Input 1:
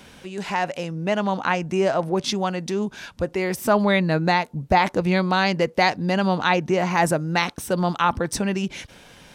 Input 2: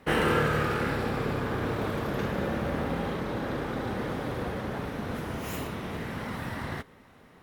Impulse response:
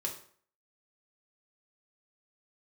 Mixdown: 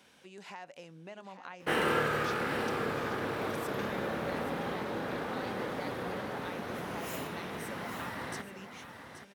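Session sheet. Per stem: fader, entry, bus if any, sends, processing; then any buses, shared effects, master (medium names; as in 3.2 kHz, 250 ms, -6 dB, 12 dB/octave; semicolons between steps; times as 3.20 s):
-13.5 dB, 0.00 s, no send, echo send -11 dB, compression 5:1, threshold -29 dBFS, peak gain reduction 14.5 dB
-2.5 dB, 1.60 s, no send, echo send -9.5 dB, none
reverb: none
echo: delay 826 ms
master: high-pass 310 Hz 6 dB/octave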